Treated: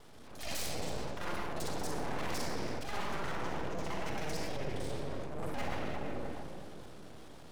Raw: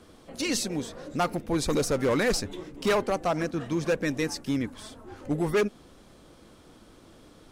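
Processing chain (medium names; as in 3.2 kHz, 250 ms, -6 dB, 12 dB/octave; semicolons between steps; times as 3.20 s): time reversed locally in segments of 39 ms; simulated room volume 3900 m³, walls mixed, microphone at 3.8 m; transient shaper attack -10 dB, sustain +2 dB; full-wave rectifier; reverse; compression 5:1, threshold -29 dBFS, peak gain reduction 12 dB; reverse; trim -3 dB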